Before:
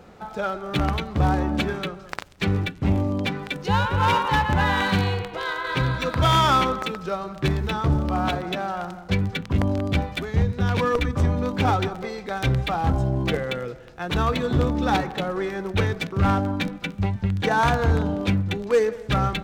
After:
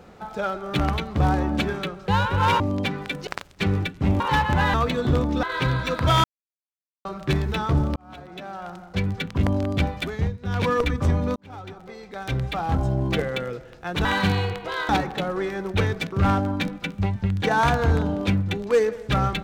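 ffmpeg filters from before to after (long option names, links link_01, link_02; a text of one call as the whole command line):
ffmpeg -i in.wav -filter_complex "[0:a]asplit=15[link_01][link_02][link_03][link_04][link_05][link_06][link_07][link_08][link_09][link_10][link_11][link_12][link_13][link_14][link_15];[link_01]atrim=end=2.082[link_16];[link_02]atrim=start=3.678:end=4.202[link_17];[link_03]atrim=start=3.008:end=3.682[link_18];[link_04]atrim=start=2.078:end=3.012[link_19];[link_05]atrim=start=4.198:end=4.742[link_20];[link_06]atrim=start=14.198:end=14.892[link_21];[link_07]atrim=start=5.578:end=6.39,asetpts=PTS-STARTPTS,afade=type=out:start_time=0.808:duration=0.004:curve=hsin[link_22];[link_08]atrim=start=6.39:end=7.2,asetpts=PTS-STARTPTS,volume=0[link_23];[link_09]atrim=start=7.2:end=8.11,asetpts=PTS-STARTPTS,afade=type=in:duration=0.004:curve=hsin,afade=type=out:start_time=0.906:duration=0.004:curve=hsin[link_24];[link_10]atrim=start=8.11:end=10.53,asetpts=PTS-STARTPTS,afade=type=in:duration=1.35,afade=type=out:start_time=2.18:duration=0.24:silence=0.223872[link_25];[link_11]atrim=start=10.53:end=10.54,asetpts=PTS-STARTPTS,volume=-13dB[link_26];[link_12]atrim=start=10.54:end=11.51,asetpts=PTS-STARTPTS,afade=type=in:duration=0.24:silence=0.223872,afade=type=out:start_time=0.966:duration=0.004:curve=hsin[link_27];[link_13]atrim=start=11.51:end=14.202,asetpts=PTS-STARTPTS,afade=type=in:duration=1.62[link_28];[link_14]atrim=start=4.738:end=5.582[link_29];[link_15]atrim=start=14.888[link_30];[link_16][link_17]acrossfade=duration=0.004:curve1=hsin:curve2=hsin[link_31];[link_31][link_18]acrossfade=duration=0.004:curve1=hsin:curve2=hsin[link_32];[link_32][link_19]acrossfade=duration=0.004:curve1=hsin:curve2=hsin[link_33];[link_33][link_20]acrossfade=duration=0.004:curve1=hsin:curve2=hsin[link_34];[link_34][link_21]acrossfade=duration=0.004:curve1=hsin:curve2=hsin[link_35];[link_22][link_23][link_24][link_25][link_26][link_27][link_28]concat=n=7:v=0:a=1[link_36];[link_35][link_36]acrossfade=duration=0.004:curve1=hsin:curve2=hsin[link_37];[link_37][link_29]acrossfade=duration=0.004:curve1=hsin:curve2=hsin[link_38];[link_38][link_30]acrossfade=duration=0.004:curve1=hsin:curve2=hsin" out.wav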